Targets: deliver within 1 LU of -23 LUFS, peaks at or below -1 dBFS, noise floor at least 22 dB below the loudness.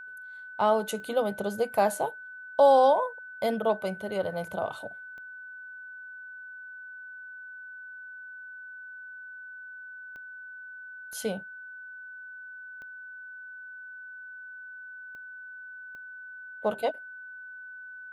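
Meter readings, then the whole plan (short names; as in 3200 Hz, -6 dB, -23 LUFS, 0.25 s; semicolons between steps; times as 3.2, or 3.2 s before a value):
clicks 7; steady tone 1500 Hz; tone level -41 dBFS; loudness -27.5 LUFS; peak -10.0 dBFS; loudness target -23.0 LUFS
-> de-click; notch 1500 Hz, Q 30; gain +4.5 dB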